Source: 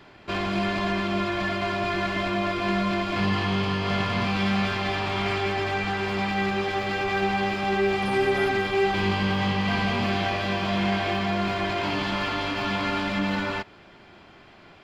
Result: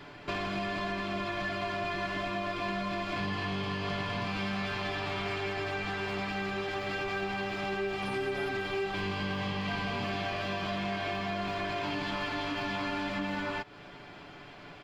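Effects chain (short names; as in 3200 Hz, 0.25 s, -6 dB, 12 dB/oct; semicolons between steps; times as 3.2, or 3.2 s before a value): comb 6.9 ms, depth 48%; compressor 3:1, threshold -35 dBFS, peak gain reduction 12 dB; gain +1 dB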